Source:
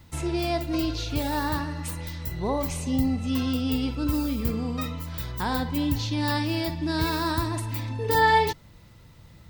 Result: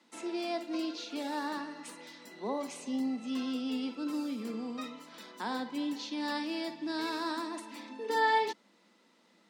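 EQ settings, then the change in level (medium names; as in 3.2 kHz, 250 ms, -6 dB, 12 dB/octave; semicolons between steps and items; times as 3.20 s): steep high-pass 200 Hz 72 dB/octave; low-pass 8.3 kHz 12 dB/octave; -7.5 dB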